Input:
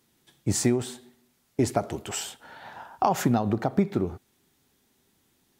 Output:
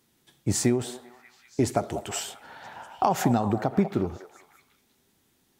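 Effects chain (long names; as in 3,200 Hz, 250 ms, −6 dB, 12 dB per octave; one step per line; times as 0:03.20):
echo through a band-pass that steps 195 ms, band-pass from 650 Hz, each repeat 0.7 octaves, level −8.5 dB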